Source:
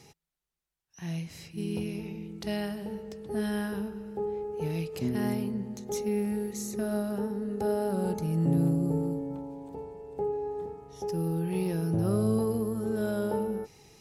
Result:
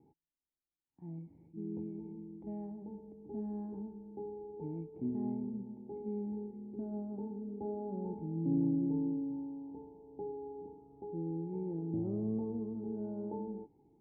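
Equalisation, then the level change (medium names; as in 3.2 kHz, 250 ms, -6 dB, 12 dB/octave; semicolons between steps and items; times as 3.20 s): cascade formant filter u; +1.0 dB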